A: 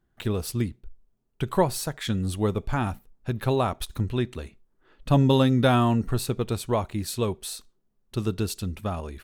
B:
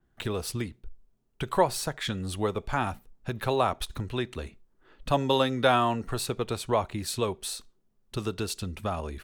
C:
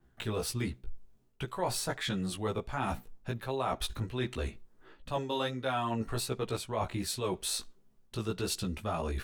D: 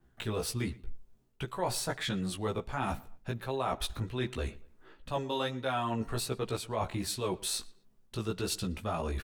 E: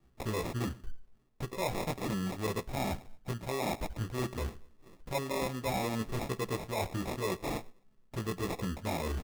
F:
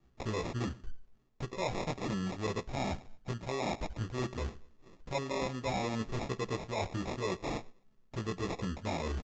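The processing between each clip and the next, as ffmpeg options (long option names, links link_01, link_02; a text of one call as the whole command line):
ffmpeg -i in.wav -filter_complex "[0:a]equalizer=frequency=13000:width_type=o:width=0.34:gain=-5,acrossover=split=420|670|7200[link_01][link_02][link_03][link_04];[link_01]acompressor=threshold=-33dB:ratio=6[link_05];[link_05][link_02][link_03][link_04]amix=inputs=4:normalize=0,adynamicequalizer=threshold=0.00447:dfrequency=4900:dqfactor=0.7:tfrequency=4900:tqfactor=0.7:attack=5:release=100:ratio=0.375:range=2.5:mode=cutabove:tftype=highshelf,volume=1.5dB" out.wav
ffmpeg -i in.wav -af "flanger=delay=15:depth=3.1:speed=1.4,areverse,acompressor=threshold=-38dB:ratio=6,areverse,volume=7.5dB" out.wav
ffmpeg -i in.wav -filter_complex "[0:a]asplit=2[link_01][link_02];[link_02]adelay=118,lowpass=frequency=3600:poles=1,volume=-22dB,asplit=2[link_03][link_04];[link_04]adelay=118,lowpass=frequency=3600:poles=1,volume=0.35[link_05];[link_01][link_03][link_05]amix=inputs=3:normalize=0" out.wav
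ffmpeg -i in.wav -af "acrusher=samples=29:mix=1:aa=0.000001,asoftclip=type=tanh:threshold=-21.5dB" out.wav
ffmpeg -i in.wav -af "aresample=16000,aresample=44100,volume=-1dB" out.wav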